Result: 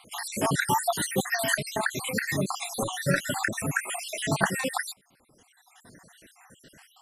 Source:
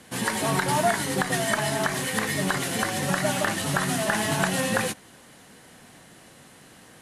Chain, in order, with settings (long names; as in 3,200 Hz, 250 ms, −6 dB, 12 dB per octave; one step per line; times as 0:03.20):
time-frequency cells dropped at random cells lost 67%
reverb reduction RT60 2 s
0:00.44–0:01.56: high-shelf EQ 9,400 Hz → 5,300 Hz +8 dB
0:02.76–0:03.17: comb filter 7.3 ms, depth 53%
0:03.80–0:04.26: high-pass filter 500 Hz 24 dB per octave
level +2 dB